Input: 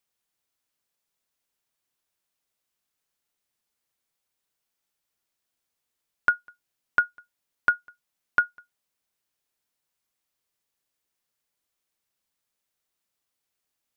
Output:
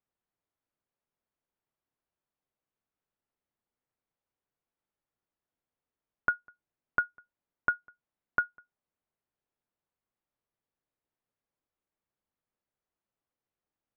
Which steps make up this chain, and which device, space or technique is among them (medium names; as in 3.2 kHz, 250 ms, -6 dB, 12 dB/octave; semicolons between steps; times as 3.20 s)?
distance through air 200 m; through cloth (treble shelf 2.2 kHz -16 dB)